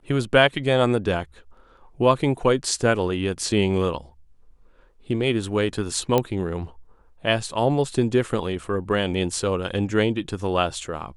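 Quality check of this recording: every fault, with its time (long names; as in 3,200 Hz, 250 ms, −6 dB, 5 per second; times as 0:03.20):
0:06.18: click −7 dBFS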